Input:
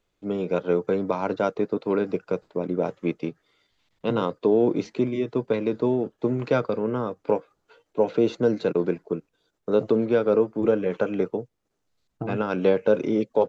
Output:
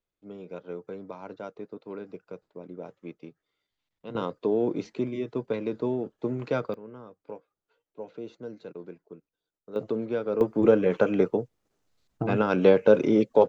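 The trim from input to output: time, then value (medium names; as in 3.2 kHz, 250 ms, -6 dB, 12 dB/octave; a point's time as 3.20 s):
-15 dB
from 4.15 s -5.5 dB
from 6.74 s -18 dB
from 9.76 s -8 dB
from 10.41 s +2 dB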